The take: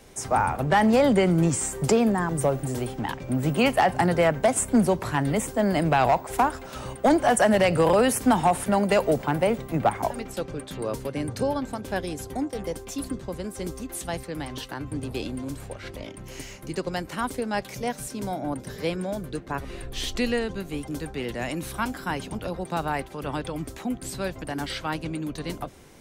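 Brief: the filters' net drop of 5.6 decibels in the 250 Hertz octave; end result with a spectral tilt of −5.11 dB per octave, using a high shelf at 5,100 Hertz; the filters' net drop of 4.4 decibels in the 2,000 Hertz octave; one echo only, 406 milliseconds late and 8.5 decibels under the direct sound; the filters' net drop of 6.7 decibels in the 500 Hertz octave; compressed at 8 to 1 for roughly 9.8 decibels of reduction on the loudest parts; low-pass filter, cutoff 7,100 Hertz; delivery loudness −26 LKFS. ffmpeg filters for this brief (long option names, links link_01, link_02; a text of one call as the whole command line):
ffmpeg -i in.wav -af "lowpass=7100,equalizer=frequency=250:width_type=o:gain=-5.5,equalizer=frequency=500:width_type=o:gain=-7,equalizer=frequency=2000:width_type=o:gain=-4.5,highshelf=frequency=5100:gain=-3.5,acompressor=threshold=-30dB:ratio=8,aecho=1:1:406:0.376,volume=10dB" out.wav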